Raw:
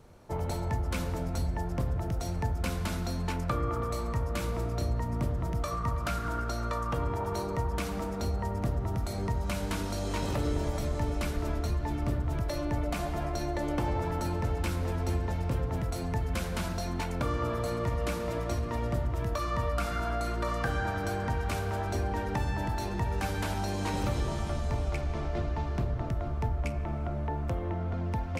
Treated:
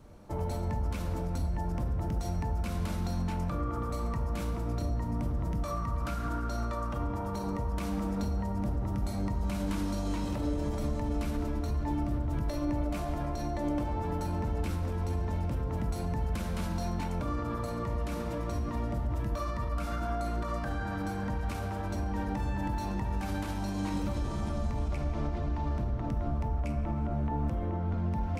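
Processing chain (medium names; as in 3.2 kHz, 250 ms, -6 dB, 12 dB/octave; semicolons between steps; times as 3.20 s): peak limiter -27.5 dBFS, peak gain reduction 9 dB; on a send: reverberation RT60 0.80 s, pre-delay 3 ms, DRR 3.5 dB; on the sum: trim -2 dB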